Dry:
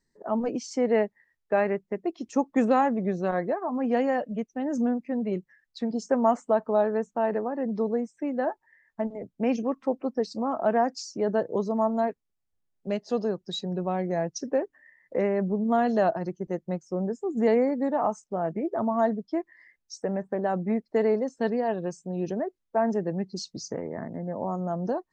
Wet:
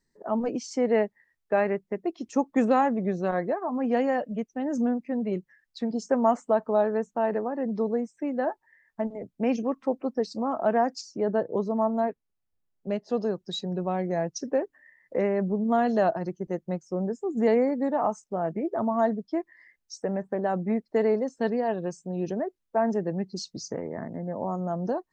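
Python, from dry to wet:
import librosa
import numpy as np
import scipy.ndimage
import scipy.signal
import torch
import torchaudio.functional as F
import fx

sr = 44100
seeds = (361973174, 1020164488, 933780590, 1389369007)

y = fx.high_shelf(x, sr, hz=3400.0, db=-9.0, at=(11.01, 13.22))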